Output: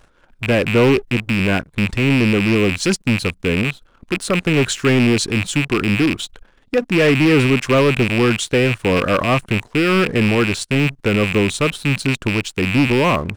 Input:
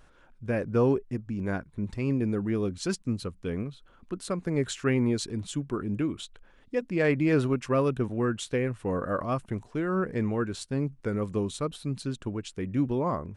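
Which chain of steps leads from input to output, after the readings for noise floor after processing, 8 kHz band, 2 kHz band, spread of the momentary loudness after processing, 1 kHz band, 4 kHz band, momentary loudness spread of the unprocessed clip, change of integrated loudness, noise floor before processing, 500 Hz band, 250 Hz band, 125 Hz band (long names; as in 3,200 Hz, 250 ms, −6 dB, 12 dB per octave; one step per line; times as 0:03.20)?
−55 dBFS, +14.0 dB, +19.0 dB, 6 LU, +12.0 dB, +19.0 dB, 9 LU, +12.5 dB, −58 dBFS, +11.0 dB, +11.5 dB, +11.5 dB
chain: loose part that buzzes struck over −38 dBFS, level −21 dBFS
leveller curve on the samples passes 2
level +6 dB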